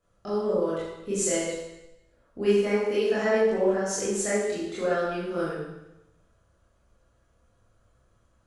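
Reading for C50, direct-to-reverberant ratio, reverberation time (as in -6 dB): -0.5 dB, -10.0 dB, 0.95 s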